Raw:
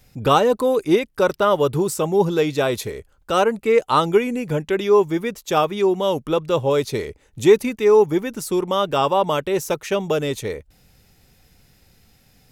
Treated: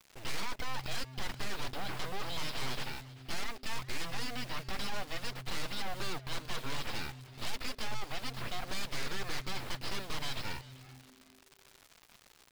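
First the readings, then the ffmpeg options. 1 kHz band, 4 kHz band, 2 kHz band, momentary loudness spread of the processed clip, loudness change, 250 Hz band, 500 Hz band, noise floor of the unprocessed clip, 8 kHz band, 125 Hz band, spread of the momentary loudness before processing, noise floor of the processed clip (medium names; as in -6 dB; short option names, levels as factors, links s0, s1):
-20.0 dB, -8.0 dB, -10.5 dB, 18 LU, -20.0 dB, -23.5 dB, -30.5 dB, -58 dBFS, -11.0 dB, -15.5 dB, 9 LU, -62 dBFS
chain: -filter_complex "[0:a]lowpass=f=3500:p=1,aderivative,aresample=11025,aeval=exprs='abs(val(0))':c=same,aresample=44100,aeval=exprs='(tanh(141*val(0)+0.1)-tanh(0.1))/141':c=same,acrusher=bits=8:dc=4:mix=0:aa=0.000001,asplit=2[s0][s1];[s1]asplit=3[s2][s3][s4];[s2]adelay=387,afreqshift=-130,volume=0.126[s5];[s3]adelay=774,afreqshift=-260,volume=0.0389[s6];[s4]adelay=1161,afreqshift=-390,volume=0.0122[s7];[s5][s6][s7]amix=inputs=3:normalize=0[s8];[s0][s8]amix=inputs=2:normalize=0,volume=5.96"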